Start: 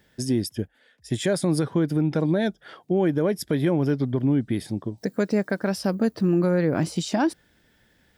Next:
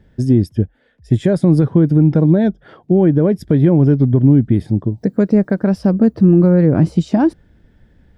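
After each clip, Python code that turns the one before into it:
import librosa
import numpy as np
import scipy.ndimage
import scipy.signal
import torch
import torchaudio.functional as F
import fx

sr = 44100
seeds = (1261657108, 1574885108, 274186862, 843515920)

y = fx.tilt_eq(x, sr, slope=-4.0)
y = y * 10.0 ** (2.5 / 20.0)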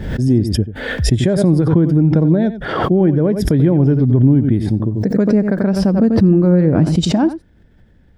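y = x + 10.0 ** (-13.0 / 20.0) * np.pad(x, (int(89 * sr / 1000.0), 0))[:len(x)]
y = fx.pre_swell(y, sr, db_per_s=50.0)
y = y * 10.0 ** (-1.5 / 20.0)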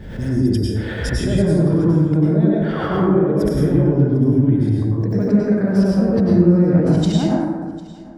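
y = x + 10.0 ** (-21.0 / 20.0) * np.pad(x, (int(751 * sr / 1000.0), 0))[:len(x)]
y = fx.rev_plate(y, sr, seeds[0], rt60_s=1.4, hf_ratio=0.4, predelay_ms=85, drr_db=-5.5)
y = y * 10.0 ** (-9.5 / 20.0)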